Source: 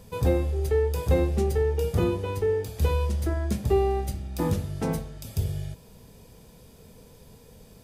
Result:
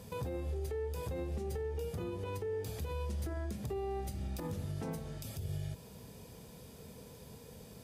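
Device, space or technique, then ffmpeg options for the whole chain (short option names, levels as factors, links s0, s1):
podcast mastering chain: -af "highpass=66,acompressor=threshold=0.0282:ratio=4,alimiter=level_in=2:limit=0.0631:level=0:latency=1:release=133,volume=0.501" -ar 44100 -c:a libmp3lame -b:a 112k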